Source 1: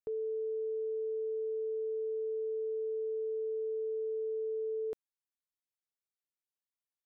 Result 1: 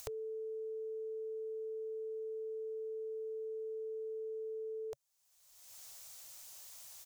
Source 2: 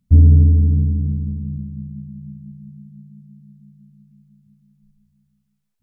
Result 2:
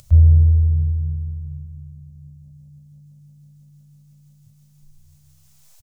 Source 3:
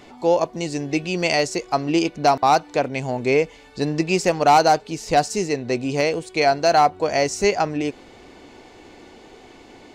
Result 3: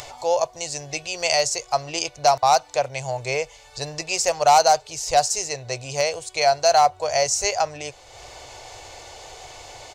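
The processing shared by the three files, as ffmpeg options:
-af "acompressor=mode=upward:threshold=-28dB:ratio=2.5,firequalizer=gain_entry='entry(130,0);entry(190,-27);entry(570,2);entry(1600,-3);entry(6400,10);entry(10000,6)':delay=0.05:min_phase=1,volume=-1.5dB"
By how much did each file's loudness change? -7.0, -1.5, -1.0 LU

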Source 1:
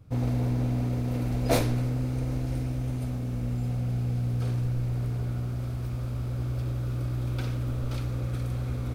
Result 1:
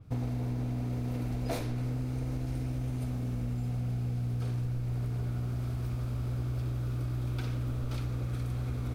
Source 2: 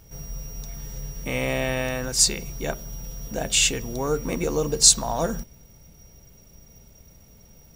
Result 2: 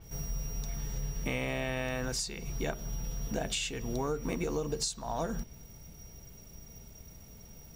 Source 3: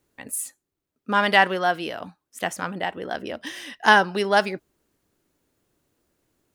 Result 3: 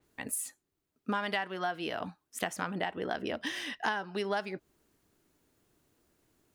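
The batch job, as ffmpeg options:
-af "bandreject=f=540:w=12,acompressor=threshold=-29dB:ratio=12,adynamicequalizer=threshold=0.002:dfrequency=5900:dqfactor=0.7:tfrequency=5900:tqfactor=0.7:attack=5:release=100:ratio=0.375:range=3.5:mode=cutabove:tftype=highshelf"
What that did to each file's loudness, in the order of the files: -4.5, -13.0, -12.5 LU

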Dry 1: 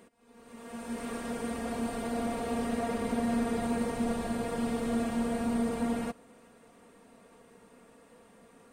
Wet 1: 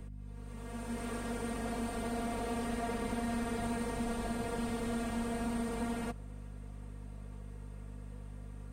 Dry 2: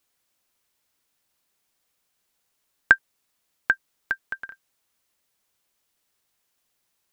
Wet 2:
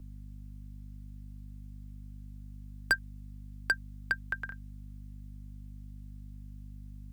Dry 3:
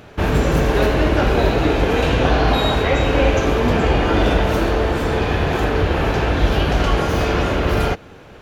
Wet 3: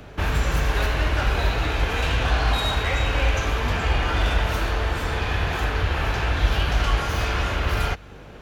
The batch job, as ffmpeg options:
-filter_complex "[0:a]aeval=exprs='val(0)+0.00794*(sin(2*PI*50*n/s)+sin(2*PI*2*50*n/s)/2+sin(2*PI*3*50*n/s)/3+sin(2*PI*4*50*n/s)/4+sin(2*PI*5*50*n/s)/5)':c=same,acrossover=split=110|860[a][b][c];[b]acompressor=threshold=-33dB:ratio=4[d];[c]asoftclip=type=hard:threshold=-19.5dB[e];[a][d][e]amix=inputs=3:normalize=0,volume=-2dB"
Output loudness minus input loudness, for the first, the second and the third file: -6.0, -15.0, -5.5 LU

